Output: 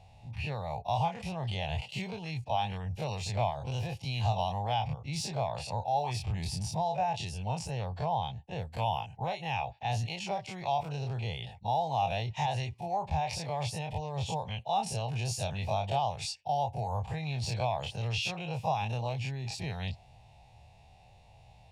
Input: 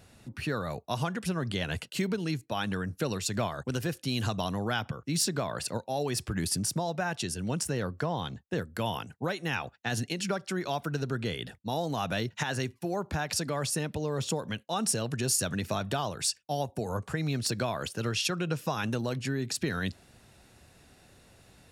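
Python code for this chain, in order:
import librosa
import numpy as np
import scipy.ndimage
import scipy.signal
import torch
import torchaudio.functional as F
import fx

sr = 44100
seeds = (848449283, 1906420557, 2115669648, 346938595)

y = fx.spec_dilate(x, sr, span_ms=60)
y = fx.curve_eq(y, sr, hz=(120.0, 300.0, 540.0, 830.0, 1400.0, 2400.0, 6000.0, 13000.0), db=(0, -22, -8, 6, -26, -4, -13, -24))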